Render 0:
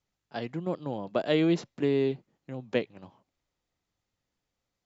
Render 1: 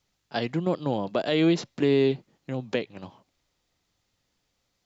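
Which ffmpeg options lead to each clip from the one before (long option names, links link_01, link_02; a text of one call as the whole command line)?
ffmpeg -i in.wav -af "equalizer=frequency=4400:width_type=o:width=1.6:gain=5,alimiter=limit=-20dB:level=0:latency=1:release=173,volume=7dB" out.wav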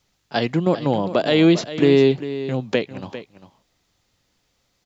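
ffmpeg -i in.wav -af "aecho=1:1:399:0.224,volume=7dB" out.wav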